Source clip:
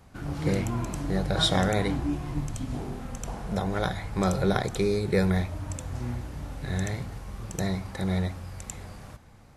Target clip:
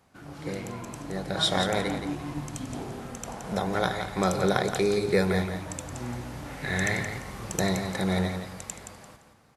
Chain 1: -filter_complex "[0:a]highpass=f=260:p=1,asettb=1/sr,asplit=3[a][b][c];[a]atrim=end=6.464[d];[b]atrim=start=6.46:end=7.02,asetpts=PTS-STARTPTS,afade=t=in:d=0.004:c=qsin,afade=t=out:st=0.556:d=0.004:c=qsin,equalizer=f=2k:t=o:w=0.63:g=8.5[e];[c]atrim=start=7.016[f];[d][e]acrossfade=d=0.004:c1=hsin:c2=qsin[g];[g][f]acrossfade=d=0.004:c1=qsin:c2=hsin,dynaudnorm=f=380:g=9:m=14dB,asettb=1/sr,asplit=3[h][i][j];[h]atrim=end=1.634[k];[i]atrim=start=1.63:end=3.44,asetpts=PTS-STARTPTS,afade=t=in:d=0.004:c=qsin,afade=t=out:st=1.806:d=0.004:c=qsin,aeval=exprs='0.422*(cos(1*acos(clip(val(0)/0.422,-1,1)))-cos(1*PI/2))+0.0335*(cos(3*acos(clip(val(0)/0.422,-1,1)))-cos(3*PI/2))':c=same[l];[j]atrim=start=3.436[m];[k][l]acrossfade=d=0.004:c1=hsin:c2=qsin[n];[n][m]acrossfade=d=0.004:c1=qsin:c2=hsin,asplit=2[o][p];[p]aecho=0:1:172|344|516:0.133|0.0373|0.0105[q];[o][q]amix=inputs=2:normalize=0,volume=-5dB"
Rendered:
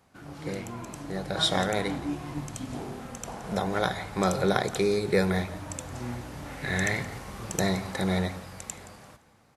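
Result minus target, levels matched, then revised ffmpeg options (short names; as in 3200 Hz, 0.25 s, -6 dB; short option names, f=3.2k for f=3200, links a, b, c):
echo-to-direct -9.5 dB
-filter_complex "[0:a]highpass=f=260:p=1,asettb=1/sr,asplit=3[a][b][c];[a]atrim=end=6.464[d];[b]atrim=start=6.46:end=7.02,asetpts=PTS-STARTPTS,afade=t=in:d=0.004:c=qsin,afade=t=out:st=0.556:d=0.004:c=qsin,equalizer=f=2k:t=o:w=0.63:g=8.5[e];[c]atrim=start=7.016[f];[d][e]acrossfade=d=0.004:c1=hsin:c2=qsin[g];[g][f]acrossfade=d=0.004:c1=qsin:c2=hsin,dynaudnorm=f=380:g=9:m=14dB,asettb=1/sr,asplit=3[h][i][j];[h]atrim=end=1.634[k];[i]atrim=start=1.63:end=3.44,asetpts=PTS-STARTPTS,afade=t=in:d=0.004:c=qsin,afade=t=out:st=1.806:d=0.004:c=qsin,aeval=exprs='0.422*(cos(1*acos(clip(val(0)/0.422,-1,1)))-cos(1*PI/2))+0.0335*(cos(3*acos(clip(val(0)/0.422,-1,1)))-cos(3*PI/2))':c=same[l];[j]atrim=start=3.436[m];[k][l]acrossfade=d=0.004:c1=hsin:c2=qsin[n];[n][m]acrossfade=d=0.004:c1=qsin:c2=hsin,asplit=2[o][p];[p]aecho=0:1:172|344|516:0.398|0.111|0.0312[q];[o][q]amix=inputs=2:normalize=0,volume=-5dB"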